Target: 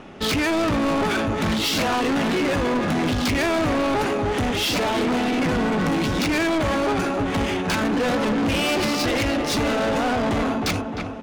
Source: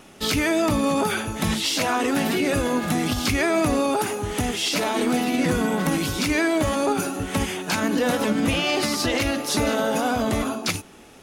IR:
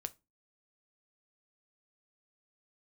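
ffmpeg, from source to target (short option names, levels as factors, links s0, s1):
-filter_complex "[0:a]asplit=2[s0][s1];[s1]adelay=307,lowpass=f=3600:p=1,volume=0.316,asplit=2[s2][s3];[s3]adelay=307,lowpass=f=3600:p=1,volume=0.52,asplit=2[s4][s5];[s5]adelay=307,lowpass=f=3600:p=1,volume=0.52,asplit=2[s6][s7];[s7]adelay=307,lowpass=f=3600:p=1,volume=0.52,asplit=2[s8][s9];[s9]adelay=307,lowpass=f=3600:p=1,volume=0.52,asplit=2[s10][s11];[s11]adelay=307,lowpass=f=3600:p=1,volume=0.52[s12];[s0][s2][s4][s6][s8][s10][s12]amix=inputs=7:normalize=0,adynamicsmooth=sensitivity=2.5:basefreq=2900,asoftclip=type=tanh:threshold=0.0473,volume=2.37"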